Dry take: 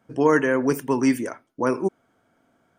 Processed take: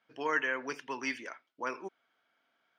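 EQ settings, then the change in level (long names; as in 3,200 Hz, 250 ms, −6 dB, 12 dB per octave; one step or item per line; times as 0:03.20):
resonant band-pass 3,600 Hz, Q 0.88
high-frequency loss of the air 260 metres
high-shelf EQ 3,100 Hz +10 dB
0.0 dB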